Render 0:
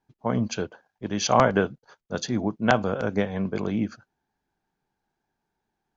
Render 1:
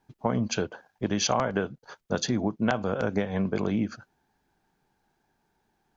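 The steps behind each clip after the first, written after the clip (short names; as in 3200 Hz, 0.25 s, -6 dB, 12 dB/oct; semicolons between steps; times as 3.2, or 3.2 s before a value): compressor 5:1, threshold -31 dBFS, peak gain reduction 16.5 dB; gain +7.5 dB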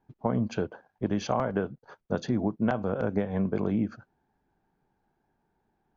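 LPF 1000 Hz 6 dB/oct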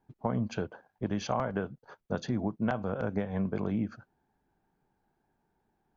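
dynamic EQ 360 Hz, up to -4 dB, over -36 dBFS, Q 0.85; gain -1.5 dB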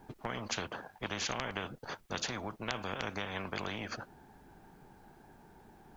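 spectral compressor 4:1; gain +3 dB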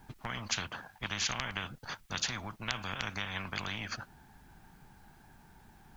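bell 440 Hz -13 dB 1.9 oct; gain +4.5 dB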